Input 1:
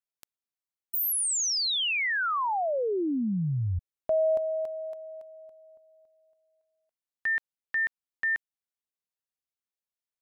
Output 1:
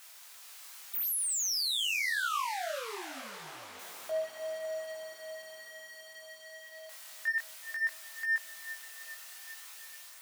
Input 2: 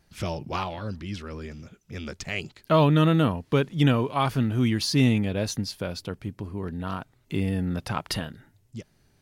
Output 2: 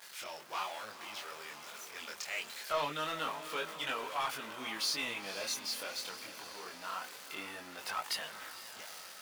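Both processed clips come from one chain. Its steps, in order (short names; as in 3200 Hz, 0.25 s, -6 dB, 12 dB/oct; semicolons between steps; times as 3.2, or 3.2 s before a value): zero-crossing step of -33.5 dBFS; HPF 880 Hz 12 dB/oct; AGC gain up to 3.5 dB; soft clip -17 dBFS; diffused feedback echo 0.489 s, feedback 63%, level -12 dB; chorus voices 2, 0.24 Hz, delay 23 ms, depth 4.3 ms; gain -5.5 dB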